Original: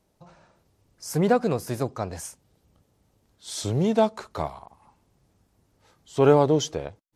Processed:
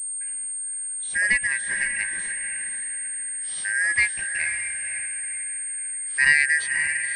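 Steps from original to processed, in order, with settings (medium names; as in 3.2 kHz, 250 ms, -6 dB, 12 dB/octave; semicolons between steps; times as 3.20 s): four frequency bands reordered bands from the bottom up 2143; echo that smears into a reverb 538 ms, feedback 42%, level -7 dB; class-D stage that switches slowly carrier 8.6 kHz; trim -1 dB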